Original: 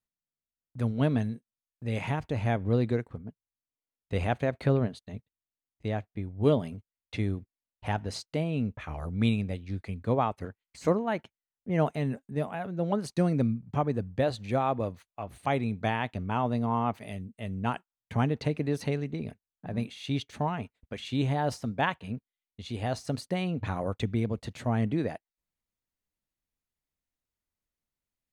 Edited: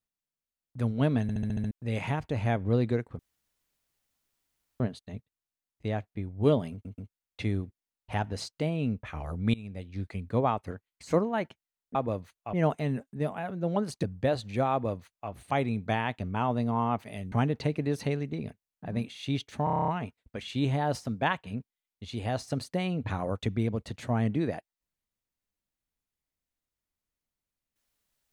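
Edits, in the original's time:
1.22 stutter in place 0.07 s, 7 plays
3.19–4.8 room tone
6.72 stutter 0.13 s, 3 plays
9.28–9.77 fade in, from -23.5 dB
13.19–13.98 cut
14.67–15.25 copy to 11.69
17.27–18.13 cut
20.45 stutter 0.03 s, 9 plays

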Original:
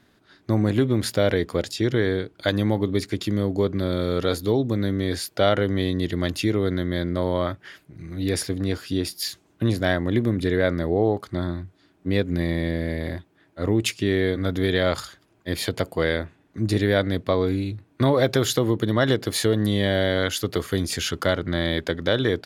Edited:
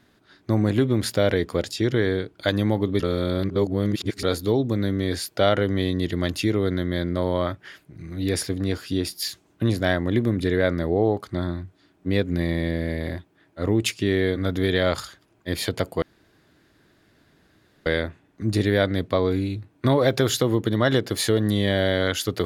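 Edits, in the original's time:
3–4.23 reverse
16.02 insert room tone 1.84 s

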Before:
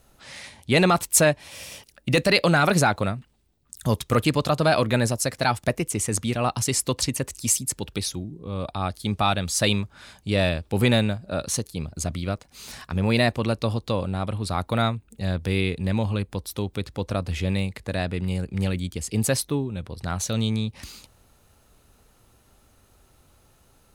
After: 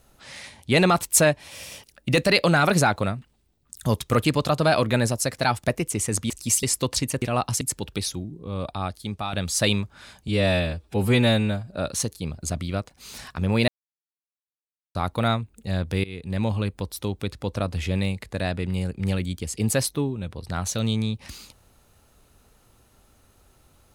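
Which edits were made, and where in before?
6.3–6.69 swap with 7.28–7.61
8.66–9.33 fade out, to -10.5 dB
10.28–11.2 stretch 1.5×
13.22–14.49 mute
15.58–16 fade in, from -22 dB

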